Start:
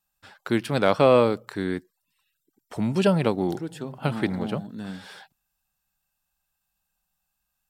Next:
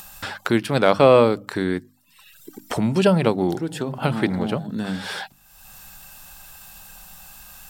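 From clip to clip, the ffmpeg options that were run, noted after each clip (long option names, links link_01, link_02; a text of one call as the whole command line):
ffmpeg -i in.wav -af "bandreject=frequency=50:width_type=h:width=6,bandreject=frequency=100:width_type=h:width=6,bandreject=frequency=150:width_type=h:width=6,bandreject=frequency=200:width_type=h:width=6,bandreject=frequency=250:width_type=h:width=6,bandreject=frequency=300:width_type=h:width=6,acompressor=mode=upward:threshold=-22dB:ratio=2.5,volume=4dB" out.wav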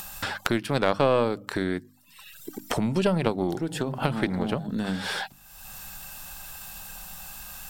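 ffmpeg -i in.wav -af "acompressor=threshold=-31dB:ratio=2,aeval=exprs='0.376*(cos(1*acos(clip(val(0)/0.376,-1,1)))-cos(1*PI/2))+0.133*(cos(2*acos(clip(val(0)/0.376,-1,1)))-cos(2*PI/2))':channel_layout=same,volume=2.5dB" out.wav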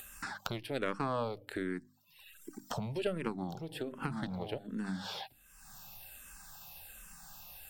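ffmpeg -i in.wav -filter_complex "[0:a]asplit=2[link_01][link_02];[link_02]afreqshift=-1.3[link_03];[link_01][link_03]amix=inputs=2:normalize=1,volume=-8dB" out.wav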